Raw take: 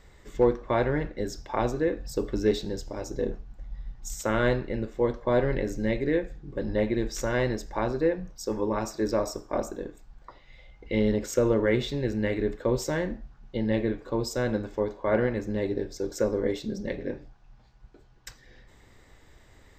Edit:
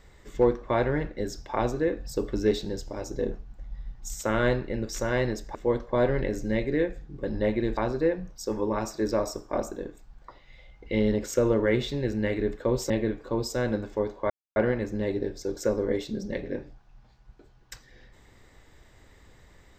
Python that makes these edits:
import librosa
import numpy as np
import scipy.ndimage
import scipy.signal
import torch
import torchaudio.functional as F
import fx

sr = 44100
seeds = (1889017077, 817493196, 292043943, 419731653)

y = fx.edit(x, sr, fx.move(start_s=7.11, length_s=0.66, to_s=4.89),
    fx.cut(start_s=12.9, length_s=0.81),
    fx.insert_silence(at_s=15.11, length_s=0.26), tone=tone)